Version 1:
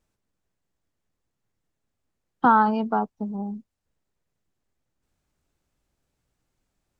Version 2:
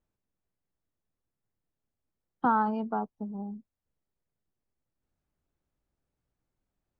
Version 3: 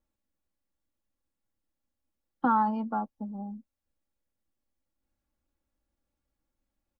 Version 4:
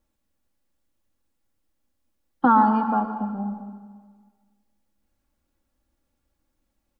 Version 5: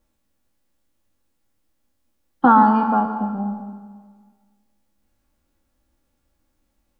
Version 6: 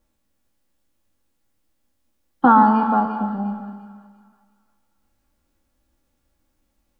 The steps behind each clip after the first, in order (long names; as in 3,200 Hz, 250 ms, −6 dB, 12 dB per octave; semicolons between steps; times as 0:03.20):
high-shelf EQ 2,500 Hz −10.5 dB; level −6.5 dB
comb filter 3.6 ms, depth 63%; level −1.5 dB
dense smooth reverb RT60 1.6 s, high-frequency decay 0.95×, pre-delay 100 ms, DRR 8 dB; level +7.5 dB
peak hold with a decay on every bin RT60 0.36 s; level +3.5 dB
delay with a high-pass on its return 349 ms, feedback 37%, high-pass 2,000 Hz, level −8 dB